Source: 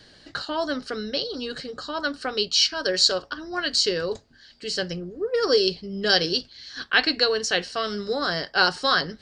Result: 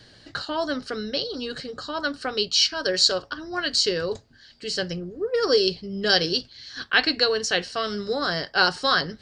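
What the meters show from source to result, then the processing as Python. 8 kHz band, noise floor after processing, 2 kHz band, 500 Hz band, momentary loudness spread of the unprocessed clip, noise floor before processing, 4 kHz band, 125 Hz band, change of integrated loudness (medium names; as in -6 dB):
0.0 dB, -52 dBFS, 0.0 dB, 0.0 dB, 12 LU, -54 dBFS, 0.0 dB, +1.5 dB, 0.0 dB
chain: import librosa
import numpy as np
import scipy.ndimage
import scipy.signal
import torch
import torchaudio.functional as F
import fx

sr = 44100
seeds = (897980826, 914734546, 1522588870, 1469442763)

y = fx.peak_eq(x, sr, hz=110.0, db=6.5, octaves=0.59)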